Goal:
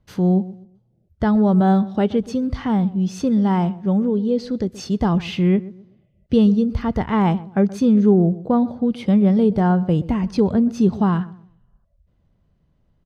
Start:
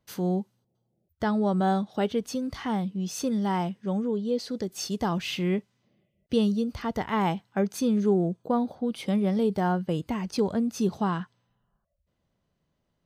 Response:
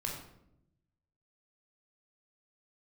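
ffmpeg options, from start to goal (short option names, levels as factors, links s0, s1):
-filter_complex "[0:a]aemphasis=mode=reproduction:type=bsi,asplit=2[s0][s1];[s1]adelay=126,lowpass=f=1200:p=1,volume=0.141,asplit=2[s2][s3];[s3]adelay=126,lowpass=f=1200:p=1,volume=0.31,asplit=2[s4][s5];[s5]adelay=126,lowpass=f=1200:p=1,volume=0.31[s6];[s0][s2][s4][s6]amix=inputs=4:normalize=0,volume=1.68"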